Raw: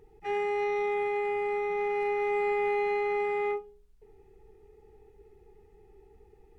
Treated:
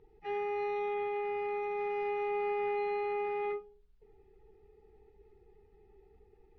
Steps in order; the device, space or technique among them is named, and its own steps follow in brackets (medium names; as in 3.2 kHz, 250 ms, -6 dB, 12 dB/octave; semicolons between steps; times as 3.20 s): clip after many re-uploads (low-pass 5 kHz 24 dB/octave; coarse spectral quantiser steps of 15 dB); 1.34–2.28 s: treble shelf 5 kHz +5 dB; trim -4.5 dB